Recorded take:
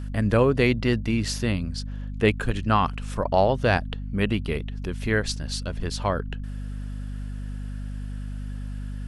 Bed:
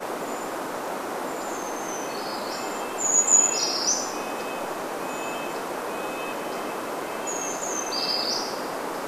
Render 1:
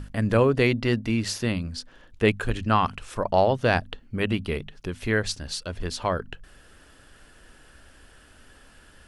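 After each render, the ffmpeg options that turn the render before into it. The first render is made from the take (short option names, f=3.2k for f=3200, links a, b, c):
-af "bandreject=f=50:t=h:w=6,bandreject=f=100:t=h:w=6,bandreject=f=150:t=h:w=6,bandreject=f=200:t=h:w=6,bandreject=f=250:t=h:w=6"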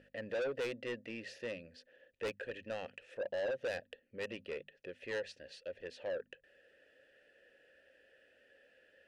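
-filter_complex "[0:a]asplit=3[a][b][c];[a]bandpass=f=530:t=q:w=8,volume=0dB[d];[b]bandpass=f=1.84k:t=q:w=8,volume=-6dB[e];[c]bandpass=f=2.48k:t=q:w=8,volume=-9dB[f];[d][e][f]amix=inputs=3:normalize=0,asoftclip=type=tanh:threshold=-33.5dB"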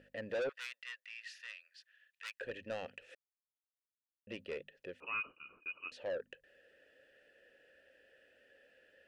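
-filter_complex "[0:a]asettb=1/sr,asplit=3[a][b][c];[a]atrim=end=0.494[d];[b]atrim=start=0.49:end=2.41,asetpts=PTS-STARTPTS,afade=t=in:d=0.004:c=qsin,afade=t=out:st=1.916:d=0.004:c=qsin,highpass=f=1.3k:w=0.5412,highpass=f=1.3k:w=1.3066[e];[c]atrim=start=2.406[f];[d][e]acrossfade=d=0.004:c1=hsin:c2=qsin[g];[g][f]acrossfade=d=0.004:c1=qsin:c2=hsin,asettb=1/sr,asplit=3[h][i][j];[h]atrim=end=5.004[k];[i]atrim=start=5:end=5.92,asetpts=PTS-STARTPTS,afade=t=in:d=0.004:c=qsin,afade=t=out:st=0.916:d=0.004:c=qsin,lowpass=f=2.6k:t=q:w=0.5098,lowpass=f=2.6k:t=q:w=0.6013,lowpass=f=2.6k:t=q:w=0.9,lowpass=f=2.6k:t=q:w=2.563,afreqshift=-3000[l];[j]atrim=start=5.916[m];[k][l]acrossfade=d=0.004:c1=hsin:c2=qsin[n];[n][m]acrossfade=d=0.004:c1=qsin:c2=hsin,asplit=3[o][p][q];[o]atrim=end=3.15,asetpts=PTS-STARTPTS,afade=t=out:st=3.146:d=0.004:c=hsin[r];[p]atrim=start=3.15:end=4.27,asetpts=PTS-STARTPTS,volume=0[s];[q]atrim=start=4.27,asetpts=PTS-STARTPTS,afade=t=in:d=0.004:c=hsin[t];[r][s][t]concat=n=3:v=0:a=1"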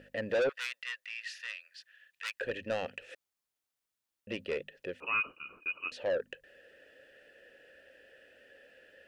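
-af "volume=7.5dB"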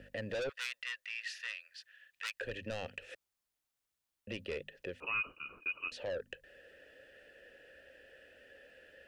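-filter_complex "[0:a]acrossover=split=100|3000[a][b][c];[a]acontrast=84[d];[b]alimiter=level_in=7.5dB:limit=-24dB:level=0:latency=1:release=197,volume=-7.5dB[e];[d][e][c]amix=inputs=3:normalize=0"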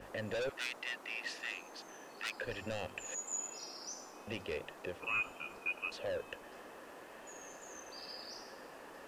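-filter_complex "[1:a]volume=-22.5dB[a];[0:a][a]amix=inputs=2:normalize=0"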